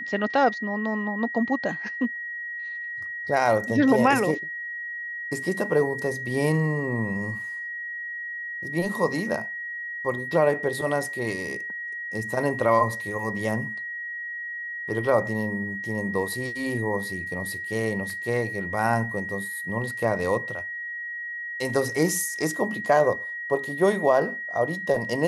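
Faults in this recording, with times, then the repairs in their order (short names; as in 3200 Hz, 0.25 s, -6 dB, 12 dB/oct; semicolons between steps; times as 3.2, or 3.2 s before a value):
tone 1900 Hz -31 dBFS
18.1 gap 2.1 ms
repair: notch 1900 Hz, Q 30; interpolate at 18.1, 2.1 ms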